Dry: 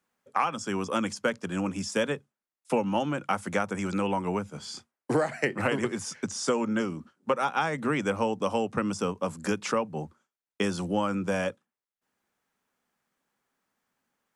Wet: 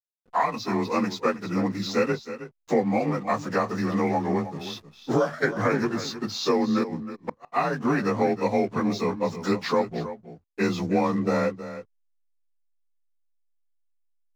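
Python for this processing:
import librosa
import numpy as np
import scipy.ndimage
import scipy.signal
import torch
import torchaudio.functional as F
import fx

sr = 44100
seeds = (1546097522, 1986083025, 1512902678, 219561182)

p1 = fx.partial_stretch(x, sr, pct=90)
p2 = fx.backlash(p1, sr, play_db=-48.0)
p3 = fx.gate_flip(p2, sr, shuts_db=-20.0, range_db=-39, at=(6.83, 7.52), fade=0.02)
p4 = p3 + fx.echo_single(p3, sr, ms=318, db=-12.5, dry=0)
y = p4 * 10.0 ** (5.5 / 20.0)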